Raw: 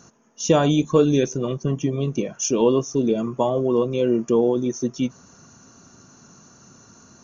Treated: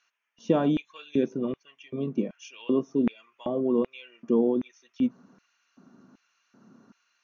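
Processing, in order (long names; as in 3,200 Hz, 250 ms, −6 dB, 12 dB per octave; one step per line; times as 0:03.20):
auto-filter high-pass square 1.3 Hz 220–2,400 Hz
high-frequency loss of the air 300 metres
level −7.5 dB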